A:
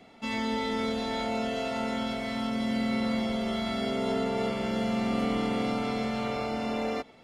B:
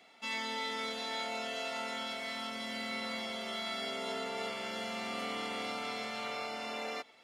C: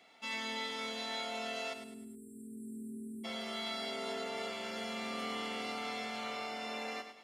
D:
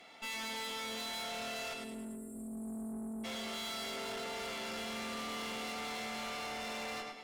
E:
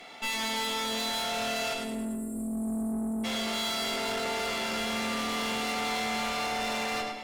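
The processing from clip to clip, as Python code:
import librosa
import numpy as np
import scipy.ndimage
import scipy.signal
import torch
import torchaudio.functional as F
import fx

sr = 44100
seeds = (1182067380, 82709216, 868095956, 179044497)

y1 = fx.highpass(x, sr, hz=1500.0, slope=6)
y2 = fx.spec_erase(y1, sr, start_s=1.73, length_s=1.51, low_hz=450.0, high_hz=7500.0)
y2 = fx.echo_feedback(y2, sr, ms=104, feedback_pct=37, wet_db=-9)
y2 = F.gain(torch.from_numpy(y2), -2.0).numpy()
y3 = fx.rev_fdn(y2, sr, rt60_s=1.6, lf_ratio=1.0, hf_ratio=0.55, size_ms=34.0, drr_db=13.0)
y3 = fx.tube_stage(y3, sr, drive_db=47.0, bias=0.45)
y3 = F.gain(torch.from_numpy(y3), 8.0).numpy()
y4 = fx.room_shoebox(y3, sr, seeds[0], volume_m3=68.0, walls='mixed', distance_m=0.3)
y4 = F.gain(torch.from_numpy(y4), 8.5).numpy()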